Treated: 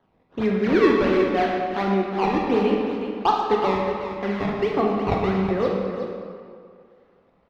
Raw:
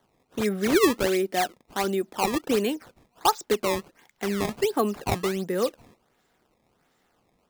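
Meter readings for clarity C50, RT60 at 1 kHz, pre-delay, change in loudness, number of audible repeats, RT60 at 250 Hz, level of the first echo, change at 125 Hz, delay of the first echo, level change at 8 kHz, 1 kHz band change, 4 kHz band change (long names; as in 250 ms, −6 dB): −0.5 dB, 2.1 s, 17 ms, +3.5 dB, 1, 2.0 s, −9.0 dB, +6.0 dB, 368 ms, below −15 dB, +5.0 dB, −3.0 dB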